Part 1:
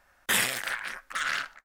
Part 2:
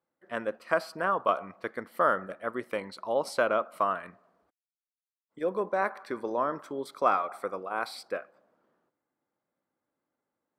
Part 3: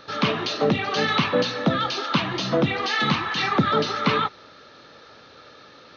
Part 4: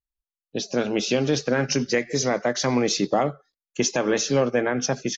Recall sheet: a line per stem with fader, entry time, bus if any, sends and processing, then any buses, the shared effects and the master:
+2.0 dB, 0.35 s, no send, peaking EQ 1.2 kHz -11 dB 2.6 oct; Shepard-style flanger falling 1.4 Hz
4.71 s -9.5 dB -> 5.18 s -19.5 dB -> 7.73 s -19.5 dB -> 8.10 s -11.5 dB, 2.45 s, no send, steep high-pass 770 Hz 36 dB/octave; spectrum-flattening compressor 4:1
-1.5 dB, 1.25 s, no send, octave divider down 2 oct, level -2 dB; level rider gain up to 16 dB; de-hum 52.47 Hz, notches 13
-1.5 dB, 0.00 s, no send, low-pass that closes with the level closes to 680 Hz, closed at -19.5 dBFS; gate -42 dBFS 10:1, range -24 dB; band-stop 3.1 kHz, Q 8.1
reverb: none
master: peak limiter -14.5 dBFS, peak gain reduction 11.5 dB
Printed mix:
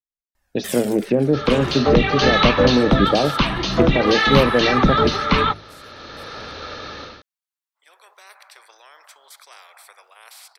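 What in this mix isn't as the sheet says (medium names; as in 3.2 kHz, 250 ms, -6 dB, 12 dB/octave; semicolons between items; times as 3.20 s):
stem 4 -1.5 dB -> +5.5 dB; master: missing peak limiter -14.5 dBFS, peak gain reduction 11.5 dB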